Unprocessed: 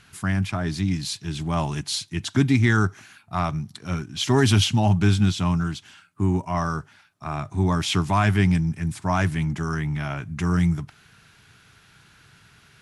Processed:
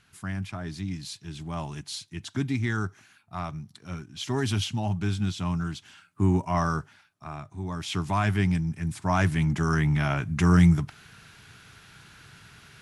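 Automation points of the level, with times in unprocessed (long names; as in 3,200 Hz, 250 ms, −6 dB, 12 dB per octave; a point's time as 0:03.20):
0:05.12 −9 dB
0:06.26 −0.5 dB
0:06.78 −0.5 dB
0:07.62 −13 dB
0:08.09 −5 dB
0:08.64 −5 dB
0:09.83 +3 dB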